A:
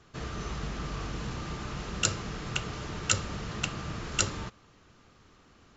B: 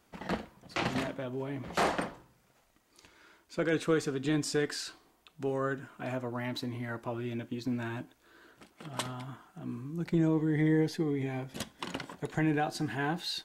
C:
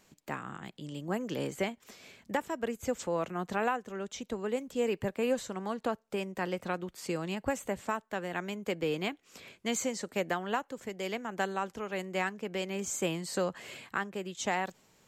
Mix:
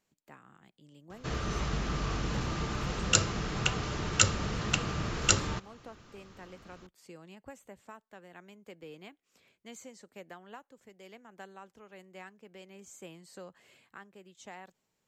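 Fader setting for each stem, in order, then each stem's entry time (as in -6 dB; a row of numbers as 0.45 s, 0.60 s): +3.0 dB, mute, -16.0 dB; 1.10 s, mute, 0.00 s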